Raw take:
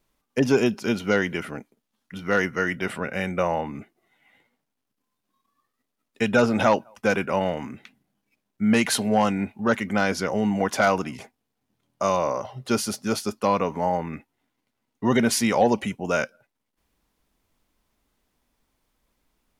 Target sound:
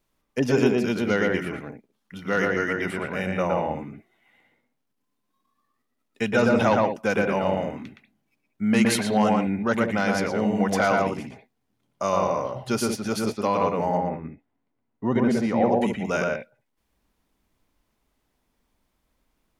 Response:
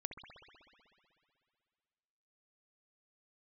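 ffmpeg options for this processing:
-filter_complex "[0:a]asettb=1/sr,asplit=3[s0][s1][s2];[s0]atrim=end=13.974[s3];[s1]atrim=start=13.97:end=15.81,asetpts=PTS-STARTPTS,afade=t=in:d=0.004:c=qsin,afade=t=out:st=1.836:d=0.004:c=qsin,lowpass=f=1000:p=1[s4];[s2]atrim=start=15.806[s5];[s3][s4]acrossfade=d=0.004:c1=hsin:c2=qsin[s6];[s6][s5]acrossfade=d=0.004:c1=qsin:c2=hsin,asplit=2[s7][s8];[s8]aemphasis=mode=reproduction:type=75kf[s9];[1:a]atrim=start_sample=2205,atrim=end_sample=4410,adelay=117[s10];[s9][s10]afir=irnorm=-1:irlink=0,volume=1.5[s11];[s7][s11]amix=inputs=2:normalize=0,volume=0.75"

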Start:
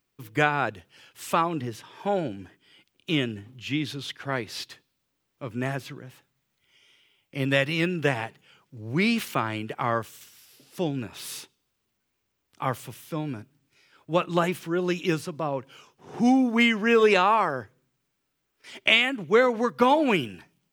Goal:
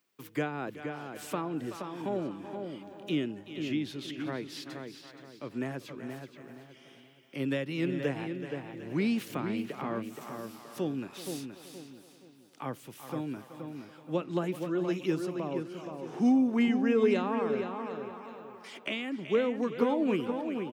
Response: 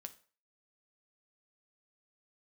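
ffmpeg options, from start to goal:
-filter_complex "[0:a]asplit=2[s0][s1];[s1]aecho=0:1:376|752|1128:0.141|0.0537|0.0204[s2];[s0][s2]amix=inputs=2:normalize=0,acrossover=split=390[s3][s4];[s4]acompressor=threshold=0.00398:ratio=2[s5];[s3][s5]amix=inputs=2:normalize=0,highpass=230,asplit=2[s6][s7];[s7]adelay=473,lowpass=f=2700:p=1,volume=0.501,asplit=2[s8][s9];[s9]adelay=473,lowpass=f=2700:p=1,volume=0.34,asplit=2[s10][s11];[s11]adelay=473,lowpass=f=2700:p=1,volume=0.34,asplit=2[s12][s13];[s13]adelay=473,lowpass=f=2700:p=1,volume=0.34[s14];[s8][s10][s12][s14]amix=inputs=4:normalize=0[s15];[s6][s15]amix=inputs=2:normalize=0"

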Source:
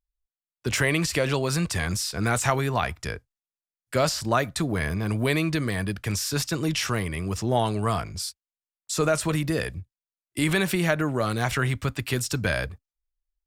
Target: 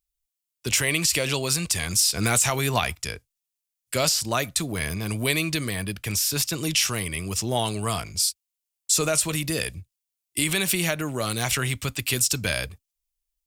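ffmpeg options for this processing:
-filter_complex "[0:a]asettb=1/sr,asplit=3[s0][s1][s2];[s0]atrim=end=1.994[s3];[s1]atrim=start=1.99:end=2.95,asetpts=PTS-STARTPTS,afade=t=in:d=0.004:c=qsin,afade=t=out:st=0.956:d=0.004:c=qsin,acontrast=38[s4];[s2]atrim=start=2.946[s5];[s3][s4]acrossfade=d=0.004:c1=hsin:c2=qsin[s6];[s6][s5]acrossfade=d=0.004:c1=qsin:c2=hsin,asettb=1/sr,asplit=3[s7][s8][s9];[s7]atrim=end=5.694[s10];[s8]atrim=start=5.69:end=6.58,asetpts=PTS-STARTPTS,afade=t=in:d=0.004:c=qsin,afade=t=out:st=0.886:d=0.004:c=qsin,equalizer=f=6900:w=0.58:g=-5[s11];[s9]atrim=start=6.576[s12];[s10][s11]acrossfade=d=0.004:c1=hsin:c2=qsin[s13];[s13][s12]acrossfade=d=0.004:c1=qsin:c2=hsin,aexciter=amount=3.9:drive=2:freq=2300,alimiter=limit=0.501:level=0:latency=1:release=346,volume=0.75"

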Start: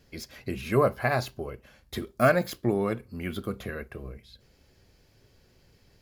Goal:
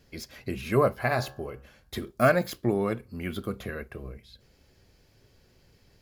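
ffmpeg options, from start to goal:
-filter_complex "[0:a]asettb=1/sr,asplit=3[s0][s1][s2];[s0]atrim=end=0.924[s3];[s1]atrim=start=0.92:end=2.1,asetpts=PTS-STARTPTS,afade=t=in:d=0.004:c=qsin,afade=t=out:st=1.176:d=0.004:c=qsin,bandreject=f=68.3:t=h:w=4,bandreject=f=136.6:t=h:w=4,bandreject=f=204.9:t=h:w=4,bandreject=f=273.2:t=h:w=4,bandreject=f=341.5:t=h:w=4,bandreject=f=409.8:t=h:w=4,bandreject=f=478.1:t=h:w=4,bandreject=f=546.4:t=h:w=4,bandreject=f=614.7:t=h:w=4,bandreject=f=683:t=h:w=4,bandreject=f=751.3:t=h:w=4,bandreject=f=819.6:t=h:w=4,bandreject=f=887.9:t=h:w=4,bandreject=f=956.2:t=h:w=4,bandreject=f=1024.5:t=h:w=4,bandreject=f=1092.8:t=h:w=4,bandreject=f=1161.1:t=h:w=4,bandreject=f=1229.4:t=h:w=4,bandreject=f=1297.7:t=h:w=4,bandreject=f=1366:t=h:w=4,bandreject=f=1434.3:t=h:w=4,bandreject=f=1502.6:t=h:w=4,bandreject=f=1570.9:t=h:w=4,bandreject=f=1639.2:t=h:w=4,bandreject=f=1707.5:t=h:w=4[s4];[s2]atrim=start=2.096[s5];[s3][s4]acrossfade=d=0.004:c1=hsin:c2=qsin[s6];[s6][s5]acrossfade=d=0.004:c1=qsin:c2=hsin"

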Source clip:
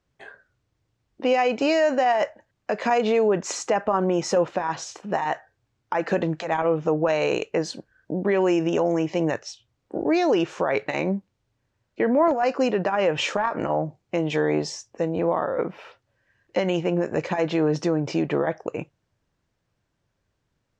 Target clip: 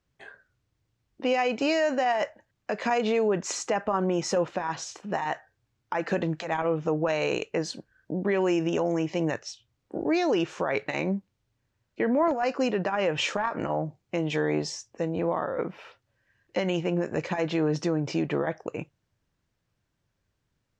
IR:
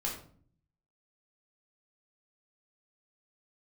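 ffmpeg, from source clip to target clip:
-af "equalizer=f=610:w=0.61:g=-3.5,volume=0.841"

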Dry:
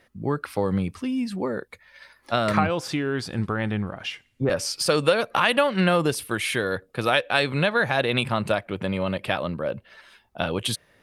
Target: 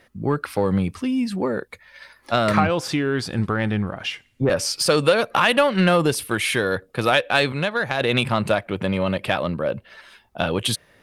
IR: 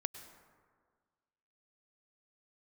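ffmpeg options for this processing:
-filter_complex "[0:a]asplit=2[s0][s1];[s1]asoftclip=type=tanh:threshold=0.133,volume=0.631[s2];[s0][s2]amix=inputs=2:normalize=0,asettb=1/sr,asplit=3[s3][s4][s5];[s3]atrim=end=7.524[s6];[s4]atrim=start=7.52:end=8.01,asetpts=PTS-STARTPTS,afade=t=in:d=0.004:c=qsin,afade=t=out:st=0.486:d=0.004:c=qsin,aeval=exprs='0.562*(cos(1*acos(clip(val(0)/0.562,-1,1)))-cos(1*PI/2))+0.1*(cos(3*acos(clip(val(0)/0.562,-1,1)))-cos(3*PI/2))':c=same[s7];[s5]atrim=start=8.006[s8];[s6][s7]acrossfade=d=0.004:c1=hsin:c2=qsin[s9];[s9][s8]acrossfade=d=0.004:c1=qsin:c2=hsin"

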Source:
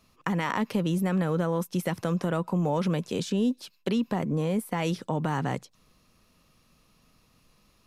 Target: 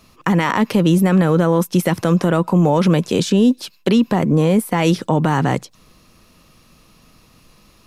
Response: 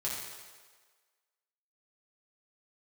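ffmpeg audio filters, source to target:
-filter_complex "[0:a]asplit=2[s0][s1];[s1]alimiter=limit=0.112:level=0:latency=1:release=14,volume=1.33[s2];[s0][s2]amix=inputs=2:normalize=0,equalizer=f=330:w=7.7:g=3.5,volume=1.78"

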